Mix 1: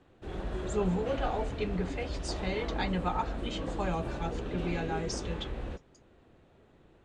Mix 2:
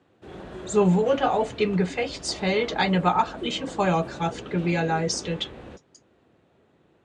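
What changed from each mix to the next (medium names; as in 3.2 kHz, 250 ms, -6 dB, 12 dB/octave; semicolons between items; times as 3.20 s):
speech +11.0 dB; master: add high-pass 110 Hz 12 dB/octave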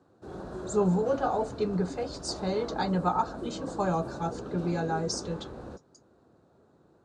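speech -5.5 dB; master: add high-order bell 2.5 kHz -14 dB 1.1 oct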